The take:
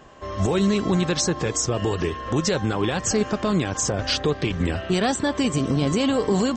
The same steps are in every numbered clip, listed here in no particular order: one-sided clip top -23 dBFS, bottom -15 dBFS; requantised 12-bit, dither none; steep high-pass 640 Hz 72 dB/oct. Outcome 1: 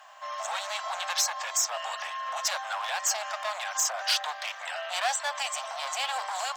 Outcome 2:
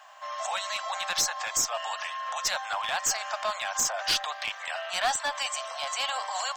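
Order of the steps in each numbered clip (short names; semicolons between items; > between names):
one-sided clip > steep high-pass > requantised; steep high-pass > one-sided clip > requantised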